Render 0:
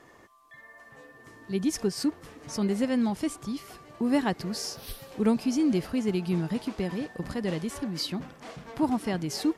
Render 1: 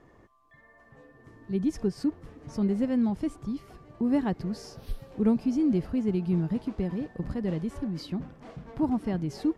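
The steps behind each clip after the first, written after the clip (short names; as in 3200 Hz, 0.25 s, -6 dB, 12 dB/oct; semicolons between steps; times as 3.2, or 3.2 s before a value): tilt -3 dB/oct; gain -5.5 dB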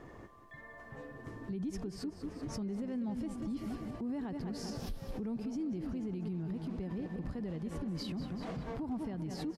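feedback echo 0.192 s, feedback 44%, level -11 dB; compressor 3:1, threshold -39 dBFS, peak gain reduction 15 dB; limiter -37 dBFS, peak gain reduction 10.5 dB; gain +5.5 dB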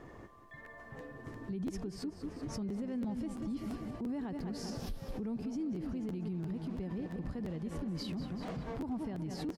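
crackling interface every 0.34 s, samples 512, repeat, from 0.64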